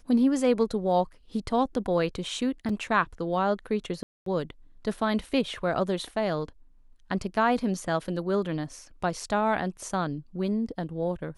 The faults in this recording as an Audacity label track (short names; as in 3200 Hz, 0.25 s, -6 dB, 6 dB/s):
2.690000	2.690000	gap 3.9 ms
4.030000	4.260000	gap 0.233 s